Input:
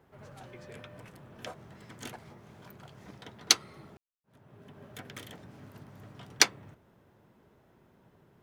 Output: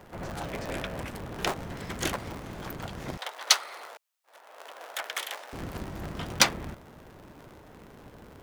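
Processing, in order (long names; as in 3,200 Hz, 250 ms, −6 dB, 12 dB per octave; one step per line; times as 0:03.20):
sub-harmonics by changed cycles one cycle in 3, inverted
0:03.17–0:05.53: high-pass filter 590 Hz 24 dB per octave
soft clipping −8.5 dBFS, distortion −14 dB
boost into a limiter +18.5 dB
level −5.5 dB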